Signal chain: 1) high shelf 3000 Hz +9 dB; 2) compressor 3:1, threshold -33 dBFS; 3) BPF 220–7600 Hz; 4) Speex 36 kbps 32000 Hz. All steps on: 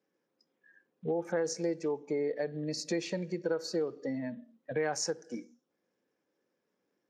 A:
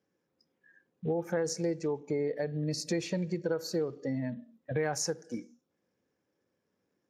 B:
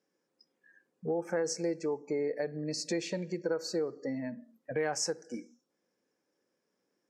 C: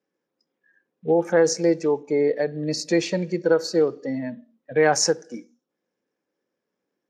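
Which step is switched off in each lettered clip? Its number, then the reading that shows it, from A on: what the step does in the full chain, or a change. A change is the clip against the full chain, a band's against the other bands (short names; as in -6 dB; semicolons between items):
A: 3, 125 Hz band +6.5 dB; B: 4, 8 kHz band +2.0 dB; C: 2, mean gain reduction 9.5 dB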